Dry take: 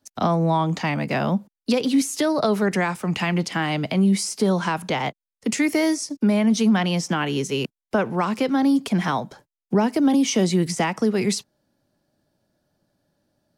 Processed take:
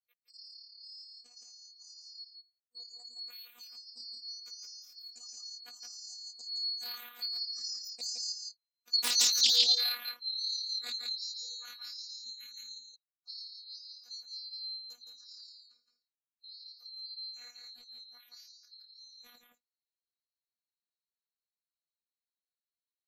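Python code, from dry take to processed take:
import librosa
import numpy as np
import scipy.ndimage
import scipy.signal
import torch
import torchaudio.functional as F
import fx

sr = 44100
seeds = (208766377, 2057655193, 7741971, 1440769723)

y = fx.band_swap(x, sr, width_hz=4000)
y = fx.doppler_pass(y, sr, speed_mps=13, closest_m=2.4, pass_at_s=5.41)
y = fx.low_shelf(y, sr, hz=77.0, db=-9.5)
y = fx.spec_gate(y, sr, threshold_db=-25, keep='strong')
y = fx.high_shelf(y, sr, hz=9200.0, db=7.5)
y = fx.notch_comb(y, sr, f0_hz=930.0)
y = y + 10.0 ** (-5.0 / 20.0) * np.pad(y, (int(98 * sr / 1000.0), 0))[:len(y)]
y = fx.stretch_grains(y, sr, factor=1.7, grain_ms=56.0)
y = fx.robotise(y, sr, hz=242.0)
y = fx.doppler_dist(y, sr, depth_ms=0.54)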